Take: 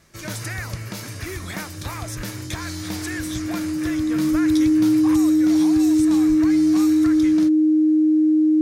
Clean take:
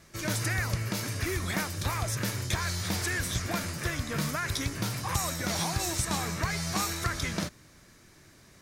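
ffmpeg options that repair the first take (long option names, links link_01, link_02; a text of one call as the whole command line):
ffmpeg -i in.wav -filter_complex "[0:a]bandreject=frequency=310:width=30,asplit=3[link_01][link_02][link_03];[link_01]afade=type=out:start_time=2.16:duration=0.02[link_04];[link_02]highpass=frequency=140:width=0.5412,highpass=frequency=140:width=1.3066,afade=type=in:start_time=2.16:duration=0.02,afade=type=out:start_time=2.28:duration=0.02[link_05];[link_03]afade=type=in:start_time=2.28:duration=0.02[link_06];[link_04][link_05][link_06]amix=inputs=3:normalize=0,asplit=3[link_07][link_08][link_09];[link_07]afade=type=out:start_time=4.31:duration=0.02[link_10];[link_08]highpass=frequency=140:width=0.5412,highpass=frequency=140:width=1.3066,afade=type=in:start_time=4.31:duration=0.02,afade=type=out:start_time=4.43:duration=0.02[link_11];[link_09]afade=type=in:start_time=4.43:duration=0.02[link_12];[link_10][link_11][link_12]amix=inputs=3:normalize=0,asplit=3[link_13][link_14][link_15];[link_13]afade=type=out:start_time=6.28:duration=0.02[link_16];[link_14]highpass=frequency=140:width=0.5412,highpass=frequency=140:width=1.3066,afade=type=in:start_time=6.28:duration=0.02,afade=type=out:start_time=6.4:duration=0.02[link_17];[link_15]afade=type=in:start_time=6.4:duration=0.02[link_18];[link_16][link_17][link_18]amix=inputs=3:normalize=0,asetnsamples=nb_out_samples=441:pad=0,asendcmd='5.15 volume volume 3.5dB',volume=0dB" out.wav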